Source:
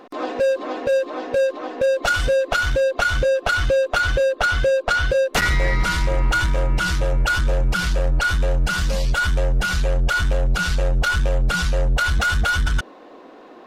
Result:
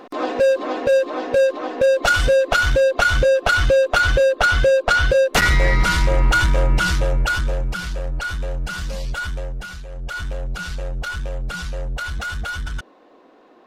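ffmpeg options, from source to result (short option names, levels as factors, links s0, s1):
-af "volume=3.76,afade=t=out:st=6.73:d=1.09:silence=0.354813,afade=t=out:st=9.21:d=0.66:silence=0.316228,afade=t=in:st=9.87:d=0.33:silence=0.375837"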